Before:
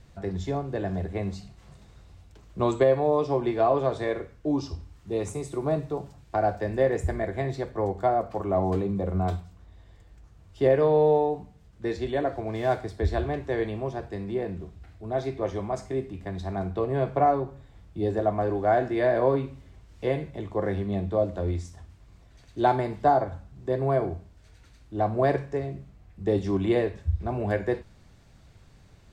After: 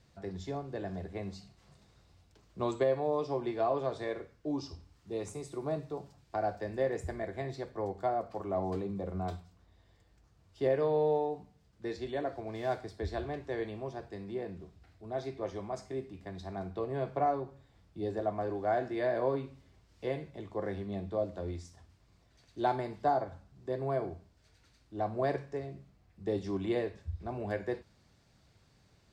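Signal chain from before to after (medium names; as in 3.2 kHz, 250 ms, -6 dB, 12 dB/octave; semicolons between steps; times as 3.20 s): high-pass 110 Hz 6 dB/octave; peaking EQ 4.8 kHz +5 dB 0.58 oct; trim -8 dB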